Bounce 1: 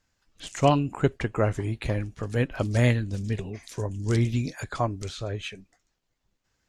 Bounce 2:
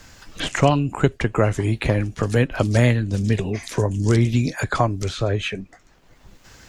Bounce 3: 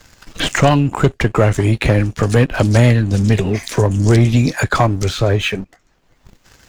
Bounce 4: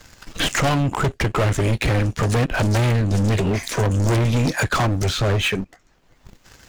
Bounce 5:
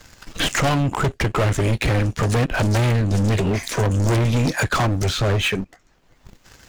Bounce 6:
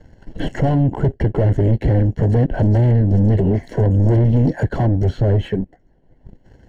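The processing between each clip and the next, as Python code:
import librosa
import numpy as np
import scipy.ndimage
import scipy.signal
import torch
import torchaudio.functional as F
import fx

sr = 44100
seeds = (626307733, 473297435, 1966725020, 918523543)

y1 = fx.band_squash(x, sr, depth_pct=70)
y1 = F.gain(torch.from_numpy(y1), 6.5).numpy()
y2 = fx.leveller(y1, sr, passes=2)
y3 = np.clip(y2, -10.0 ** (-16.0 / 20.0), 10.0 ** (-16.0 / 20.0))
y4 = y3
y5 = np.convolve(y4, np.full(36, 1.0 / 36))[:len(y4)]
y5 = F.gain(torch.from_numpy(y5), 5.0).numpy()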